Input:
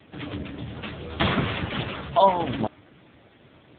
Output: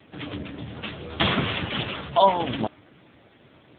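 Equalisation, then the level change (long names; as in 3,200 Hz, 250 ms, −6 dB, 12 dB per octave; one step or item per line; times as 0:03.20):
dynamic equaliser 3,100 Hz, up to +5 dB, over −44 dBFS, Q 2
low-shelf EQ 68 Hz −6 dB
0.0 dB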